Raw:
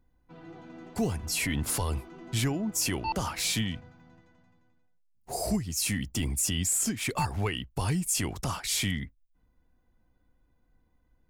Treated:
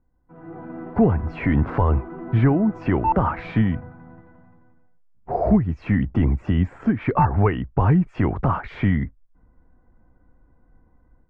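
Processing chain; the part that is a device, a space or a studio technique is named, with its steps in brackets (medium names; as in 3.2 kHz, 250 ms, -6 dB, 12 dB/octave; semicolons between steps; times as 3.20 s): action camera in a waterproof case (low-pass 1.6 kHz 24 dB/octave; level rider gain up to 12 dB; AAC 96 kbps 32 kHz)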